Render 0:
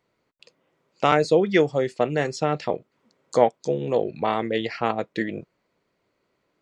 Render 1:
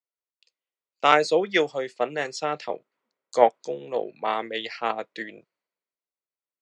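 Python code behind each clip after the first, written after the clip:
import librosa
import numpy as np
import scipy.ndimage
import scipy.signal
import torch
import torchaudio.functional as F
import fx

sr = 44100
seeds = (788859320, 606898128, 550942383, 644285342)

y = fx.weighting(x, sr, curve='A')
y = fx.band_widen(y, sr, depth_pct=70)
y = y * 10.0 ** (-1.0 / 20.0)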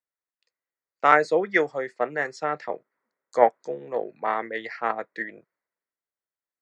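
y = fx.high_shelf_res(x, sr, hz=2300.0, db=-7.0, q=3.0)
y = y * 10.0 ** (-1.0 / 20.0)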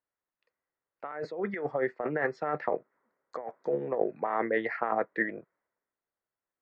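y = scipy.signal.sosfilt(scipy.signal.butter(2, 1600.0, 'lowpass', fs=sr, output='sos'), x)
y = fx.over_compress(y, sr, threshold_db=-31.0, ratio=-1.0)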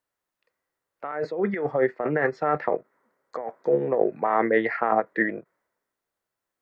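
y = fx.hpss(x, sr, part='percussive', gain_db=-5)
y = fx.end_taper(y, sr, db_per_s=530.0)
y = y * 10.0 ** (9.0 / 20.0)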